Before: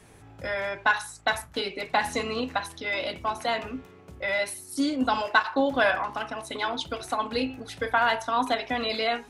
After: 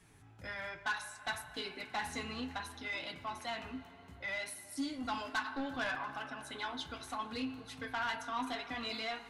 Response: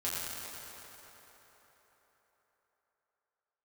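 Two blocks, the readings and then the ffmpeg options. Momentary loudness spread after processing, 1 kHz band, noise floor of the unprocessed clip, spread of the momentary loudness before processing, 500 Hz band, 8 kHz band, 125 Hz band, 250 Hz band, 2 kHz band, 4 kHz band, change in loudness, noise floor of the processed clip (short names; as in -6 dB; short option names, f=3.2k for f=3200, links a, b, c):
6 LU, -13.0 dB, -51 dBFS, 9 LU, -17.0 dB, -9.0 dB, -8.5 dB, -11.0 dB, -11.5 dB, -10.0 dB, -12.5 dB, -57 dBFS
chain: -filter_complex "[0:a]asplit=2[a][b];[1:a]atrim=start_sample=2205,highshelf=f=9.5k:g=-11.5[c];[b][c]afir=irnorm=-1:irlink=0,volume=-17.5dB[d];[a][d]amix=inputs=2:normalize=0,asoftclip=type=tanh:threshold=-18.5dB,flanger=delay=5.9:depth=6.9:regen=-45:speed=0.65:shape=triangular,equalizer=f=530:t=o:w=0.86:g=-9.5,volume=-5.5dB"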